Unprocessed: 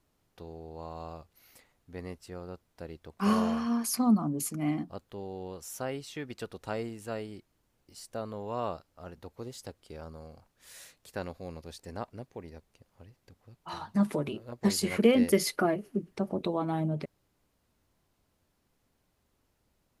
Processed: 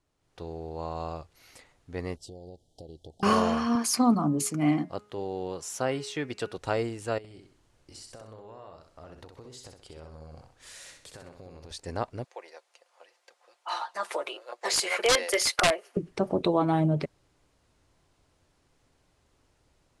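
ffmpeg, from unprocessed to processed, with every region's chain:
-filter_complex "[0:a]asettb=1/sr,asplit=3[a][b][c];[a]atrim=end=2.164[d];[b]atrim=start=2.16:end=3.23,asetpts=PTS-STARTPTS,afade=t=in:d=0.004:c=qsin,afade=t=out:st=1.066:d=0.004:c=qsin,acompressor=threshold=-46dB:ratio=12:attack=3.2:release=140:knee=1:detection=peak,asuperstop=centerf=1600:order=20:qfactor=0.73[e];[c]atrim=start=3.226[f];[d][e]acrossfade=d=0.004:c1=hsin:c2=qsin[g];[g][f]acrossfade=d=0.004:c1=qsin:c2=hsin,asettb=1/sr,asplit=3[h][i][j];[h]atrim=end=3.754[k];[i]atrim=start=3.75:end=6.58,asetpts=PTS-STARTPTS,afade=t=in:d=0.004:c=qsin,afade=t=out:st=2.826:d=0.004:c=qsin,highpass=110,bandreject=f=208.1:t=h:w=4,bandreject=f=416.2:t=h:w=4,bandreject=f=624.3:t=h:w=4,bandreject=f=832.4:t=h:w=4,bandreject=f=1.0405k:t=h:w=4,bandreject=f=1.2486k:t=h:w=4,bandreject=f=1.4567k:t=h:w=4,bandreject=f=1.6648k:t=h:w=4,bandreject=f=1.8729k:t=h:w=4,bandreject=f=2.081k:t=h:w=4,bandreject=f=2.2891k:t=h:w=4,bandreject=f=2.4972k:t=h:w=4,bandreject=f=2.7053k:t=h:w=4,bandreject=f=2.9134k:t=h:w=4[l];[j]atrim=start=6.576[m];[k][l]acrossfade=d=0.004:c1=hsin:c2=qsin[n];[n][m]acrossfade=d=0.004:c1=qsin:c2=hsin,asettb=1/sr,asplit=3[o][p][q];[o]atrim=end=7.184[r];[p]atrim=start=7.18:end=11.71,asetpts=PTS-STARTPTS,afade=t=in:d=0.004:c=qsin,afade=t=out:st=4.526:d=0.004:c=qsin,acompressor=threshold=-49dB:ratio=20:attack=3.2:release=140:knee=1:detection=peak,aecho=1:1:64|128|192|256:0.531|0.196|0.0727|0.0269,atrim=end_sample=199773[s];[q]atrim=start=11.706[t];[r][s]acrossfade=d=0.004:c1=hsin:c2=qsin[u];[u][t]acrossfade=d=0.004:c1=qsin:c2=hsin,asettb=1/sr,asplit=3[v][w][x];[v]atrim=end=12.244[y];[w]atrim=start=12.24:end=15.97,asetpts=PTS-STARTPTS,afade=t=in:d=0.004:c=qsin,afade=t=out:st=3.726:d=0.004:c=qsin,highpass=f=560:w=0.5412,highpass=f=560:w=1.3066,aecho=1:1:5.7:0.42,atrim=end_sample=164493,aeval=exprs='(mod(11.9*val(0)+1,2)-1)/11.9':c=same[z];[x]atrim=start=15.966[aa];[y][z]acrossfade=d=0.004:c1=hsin:c2=qsin[ab];[ab][aa]acrossfade=d=0.004:c1=qsin:c2=hsin,lowpass=f=9.6k:w=0.5412,lowpass=f=9.6k:w=1.3066,equalizer=f=210:t=o:w=0.28:g=-9.5,dynaudnorm=f=200:g=3:m=10.5dB,volume=-3.5dB"

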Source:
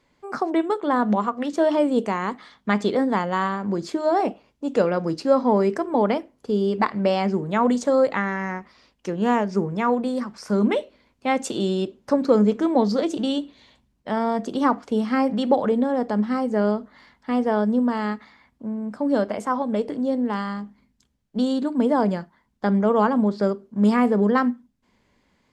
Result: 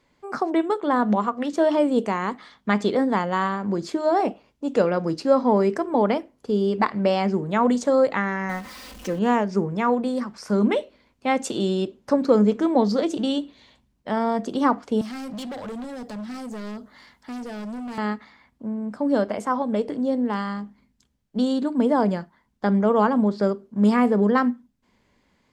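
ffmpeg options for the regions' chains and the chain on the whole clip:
-filter_complex "[0:a]asettb=1/sr,asplit=3[a][b][c];[a]atrim=end=8.494[d];[b]atrim=start=8.49:end=9.19,asetpts=PTS-STARTPTS,afade=t=in:d=0.004:c=qsin,afade=t=out:st=0.696:d=0.004:c=qsin,aeval=exprs='val(0)+0.5*0.0126*sgn(val(0))':c=same,aecho=1:1:3.9:0.55,atrim=end_sample=30870[e];[c]atrim=start=9.186[f];[d][e]acrossfade=d=0.004:c1=hsin:c2=qsin[g];[g][f]acrossfade=d=0.004:c1=qsin:c2=hsin,asettb=1/sr,asplit=3[h][i][j];[h]atrim=end=15.014[k];[i]atrim=start=15.01:end=17.98,asetpts=PTS-STARTPTS,afade=t=in:d=0.004:c=qsin,afade=t=out:st=2.966:d=0.004:c=qsin,highshelf=f=5k:g=10,acrossover=split=160|3000[l][m][n];[m]acompressor=threshold=-44dB:ratio=1.5:attack=3.2:release=140:knee=2.83:detection=peak[o];[l][o][n]amix=inputs=3:normalize=0,asoftclip=type=hard:threshold=-31dB[p];[j]atrim=start=17.976[q];[k][p]acrossfade=d=0.004:c1=hsin:c2=qsin[r];[r][q]acrossfade=d=0.004:c1=qsin:c2=hsin"

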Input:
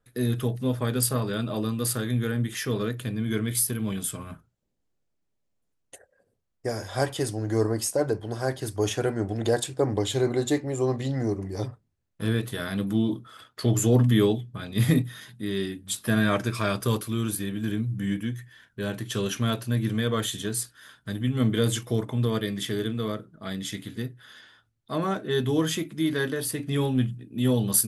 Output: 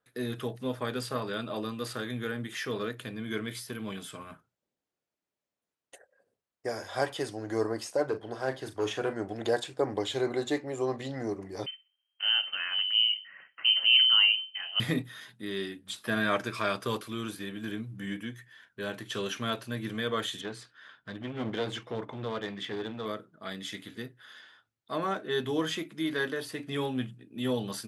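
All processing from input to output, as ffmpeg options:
-filter_complex "[0:a]asettb=1/sr,asplit=3[a][b][c];[a]atrim=end=8.074[d];[b]atrim=start=8.07:end=9.13,asetpts=PTS-STARTPTS,afade=t=in:d=0.004:c=qsin,afade=t=out:st=1.056:d=0.004:c=qsin,asoftclip=type=hard:threshold=-18.5dB,highshelf=f=5.7k:g=-8,asplit=2[e][f];[f]adelay=38,volume=-10.5dB[g];[e][g]amix=inputs=2:normalize=0,atrim=end_sample=46746[h];[c]atrim=start=9.126[i];[d][h]acrossfade=d=0.004:c1=hsin:c2=qsin[j];[j][i]acrossfade=d=0.004:c1=qsin:c2=hsin,asettb=1/sr,asplit=3[k][l][m];[k]atrim=end=11.664[n];[l]atrim=start=11.66:end=14.8,asetpts=PTS-STARTPTS,afade=t=in:d=0.004:c=qsin,afade=t=out:st=3.136:d=0.004:c=qsin,aecho=1:1:63|126|189:0.0794|0.0294|0.0109,atrim=end_sample=138474,lowpass=f=2.7k:t=q:w=0.5098,lowpass=f=2.7k:t=q:w=0.6013,lowpass=f=2.7k:t=q:w=0.9,lowpass=f=2.7k:t=q:w=2.563,afreqshift=-3200[o];[m]atrim=start=14.796[p];[n][o]acrossfade=d=0.004:c1=hsin:c2=qsin[q];[q][p]acrossfade=d=0.004:c1=qsin:c2=hsin,asettb=1/sr,asplit=3[r][s][t];[r]atrim=end=20.414[u];[s]atrim=start=20.41:end=23.06,asetpts=PTS-STARTPTS,afade=t=in:d=0.004:c=qsin,afade=t=out:st=2.646:d=0.004:c=qsin,lowpass=3.7k,aeval=exprs='clip(val(0),-1,0.0422)':c=same[v];[t]atrim=start=23.056[w];[u][v]acrossfade=d=0.004:c1=hsin:c2=qsin[x];[x][w]acrossfade=d=0.004:c1=qsin:c2=hsin,highpass=f=550:p=1,acrossover=split=5500[y][z];[z]acompressor=threshold=-40dB:ratio=4:attack=1:release=60[aa];[y][aa]amix=inputs=2:normalize=0,highshelf=f=6.1k:g=-9.5"

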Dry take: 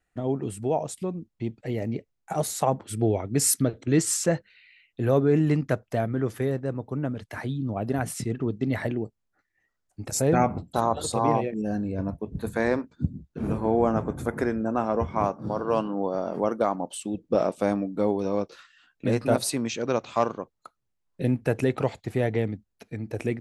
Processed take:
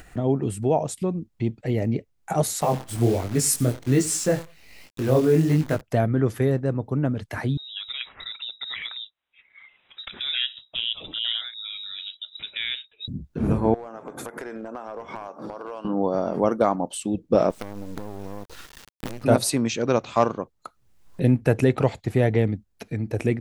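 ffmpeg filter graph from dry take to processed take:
-filter_complex "[0:a]asettb=1/sr,asplit=3[a][b][c];[a]atrim=end=2.614[d];[b]atrim=start=2.61:end=5.81,asetpts=PTS-STARTPTS,afade=t=in:d=0.004:c=qsin,afade=t=out:st=3.196:d=0.004:c=qsin,aecho=1:1:90|180:0.1|0.029,atrim=end_sample=141120,acrusher=bits=7:dc=4:mix=0:aa=0.000001,flanger=delay=19:depth=6.5:speed=1.3[e];[c]atrim=start=5.806[f];[d][e]acrossfade=d=0.004:c1=hsin:c2=qsin[g];[g][f]acrossfade=d=0.004:c1=qsin:c2=hsin,asettb=1/sr,asplit=3[h][i][j];[h]atrim=end=7.574[k];[i]atrim=start=7.57:end=13.08,asetpts=PTS-STARTPTS,afade=t=in:d=0.004:c=qsin,afade=t=out:st=5.506:d=0.004:c=qsin,highpass=f=600:p=1,lowpass=f=3.4k:t=q:w=0.5098,lowpass=f=3.4k:t=q:w=0.6013,lowpass=f=3.4k:t=q:w=0.9,lowpass=f=3.4k:t=q:w=2.563,afreqshift=-4000,aemphasis=mode=reproduction:type=75kf[l];[j]atrim=start=13.076[m];[k][l]acrossfade=d=0.004:c1=hsin:c2=qsin[n];[n][m]acrossfade=d=0.004:c1=qsin:c2=hsin,asettb=1/sr,asplit=3[o][p][q];[o]atrim=end=13.744[r];[p]atrim=start=13.74:end=15.85,asetpts=PTS-STARTPTS,afade=t=in:d=0.004:c=qsin,afade=t=out:st=2.106:d=0.004:c=qsin,highpass=440,acompressor=threshold=-38dB:ratio=6:attack=3.2:release=140:knee=1:detection=peak,aeval=exprs='clip(val(0),-1,0.0158)':c=same[s];[q]atrim=start=15.846[t];[r][s]acrossfade=d=0.004:c1=hsin:c2=qsin[u];[u][t]acrossfade=d=0.004:c1=qsin:c2=hsin,asettb=1/sr,asplit=3[v][w][x];[v]atrim=end=17.504[y];[w]atrim=start=17.5:end=19.24,asetpts=PTS-STARTPTS,afade=t=in:d=0.004:c=qsin,afade=t=out:st=1.736:d=0.004:c=qsin,acompressor=threshold=-33dB:ratio=16:attack=3.2:release=140:knee=1:detection=peak,acrusher=bits=6:dc=4:mix=0:aa=0.000001[z];[x]atrim=start=19.236[aa];[y][z]acrossfade=d=0.004:c1=hsin:c2=qsin[ab];[ab][aa]acrossfade=d=0.004:c1=qsin:c2=hsin,lowshelf=f=160:g=5,acompressor=mode=upward:threshold=-32dB:ratio=2.5,volume=3.5dB"

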